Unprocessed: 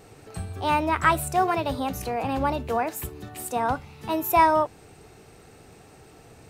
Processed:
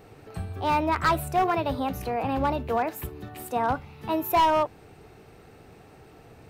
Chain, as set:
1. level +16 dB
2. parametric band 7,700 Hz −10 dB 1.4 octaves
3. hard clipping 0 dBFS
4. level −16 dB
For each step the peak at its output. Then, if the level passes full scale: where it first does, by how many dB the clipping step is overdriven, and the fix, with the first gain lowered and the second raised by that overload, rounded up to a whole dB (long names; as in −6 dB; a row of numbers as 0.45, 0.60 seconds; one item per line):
+9.5, +9.0, 0.0, −16.0 dBFS
step 1, 9.0 dB
step 1 +7 dB, step 4 −7 dB